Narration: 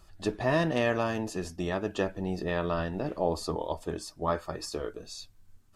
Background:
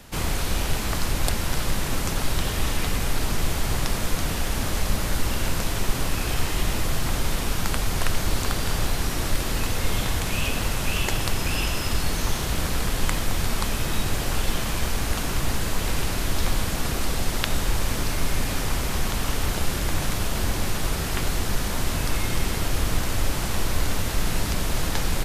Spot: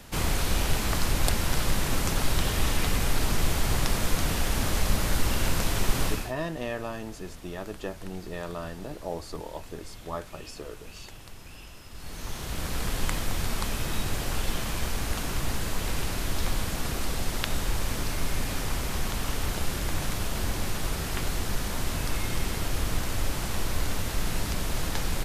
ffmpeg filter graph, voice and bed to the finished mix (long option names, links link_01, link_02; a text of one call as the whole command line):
ffmpeg -i stem1.wav -i stem2.wav -filter_complex "[0:a]adelay=5850,volume=-6dB[link_01];[1:a]volume=15.5dB,afade=type=out:start_time=6.05:duration=0.28:silence=0.1,afade=type=in:start_time=11.92:duration=0.97:silence=0.149624[link_02];[link_01][link_02]amix=inputs=2:normalize=0" out.wav